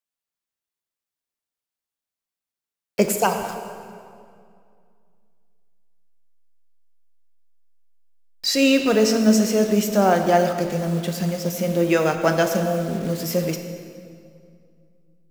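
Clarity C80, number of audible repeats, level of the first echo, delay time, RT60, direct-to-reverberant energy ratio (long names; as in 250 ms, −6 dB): 7.5 dB, no echo audible, no echo audible, no echo audible, 2.3 s, 5.5 dB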